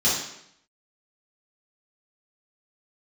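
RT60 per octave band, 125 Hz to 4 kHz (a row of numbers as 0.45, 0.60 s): 0.80, 0.75, 0.75, 0.75, 0.75, 0.70 s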